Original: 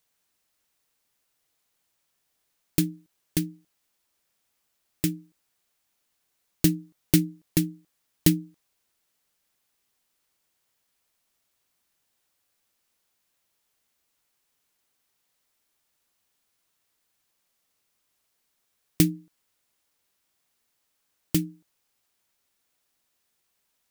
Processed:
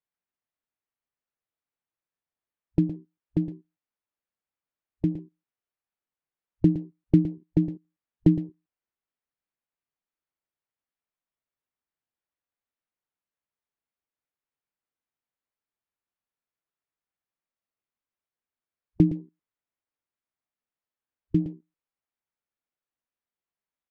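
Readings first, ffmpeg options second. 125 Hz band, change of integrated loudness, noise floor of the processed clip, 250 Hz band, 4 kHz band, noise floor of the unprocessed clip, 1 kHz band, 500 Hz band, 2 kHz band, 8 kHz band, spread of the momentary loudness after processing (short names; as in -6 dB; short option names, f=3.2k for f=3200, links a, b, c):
+2.0 dB, 0.0 dB, under -85 dBFS, +2.0 dB, under -20 dB, -76 dBFS, n/a, +2.0 dB, under -15 dB, under -35 dB, 13 LU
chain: -af "lowpass=2.2k,aecho=1:1:114:0.251,afwtdn=0.0141,volume=2dB"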